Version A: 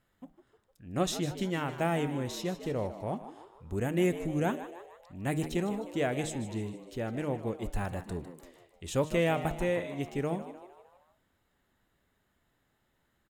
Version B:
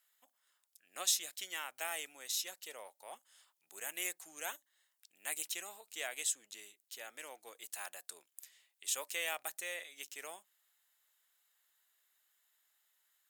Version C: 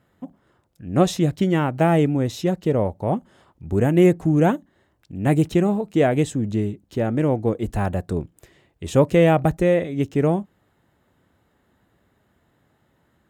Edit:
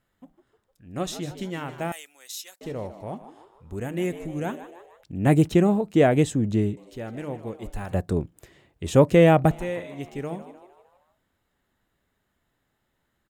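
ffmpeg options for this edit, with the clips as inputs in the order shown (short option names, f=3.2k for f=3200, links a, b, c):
-filter_complex "[2:a]asplit=2[a][b];[0:a]asplit=4[c][d][e][f];[c]atrim=end=1.922[g];[1:a]atrim=start=1.918:end=2.612[h];[d]atrim=start=2.608:end=5.032[i];[a]atrim=start=5.028:end=6.772[j];[e]atrim=start=6.768:end=7.932[k];[b]atrim=start=7.928:end=9.512[l];[f]atrim=start=9.508[m];[g][h]acrossfade=d=0.004:c1=hsin:c2=hsin[n];[n][i]acrossfade=d=0.004:c1=hsin:c2=hsin[o];[o][j]acrossfade=d=0.004:c1=hsin:c2=hsin[p];[p][k]acrossfade=d=0.004:c1=hsin:c2=hsin[q];[q][l]acrossfade=d=0.004:c1=hsin:c2=hsin[r];[r][m]acrossfade=d=0.004:c1=hsin:c2=hsin"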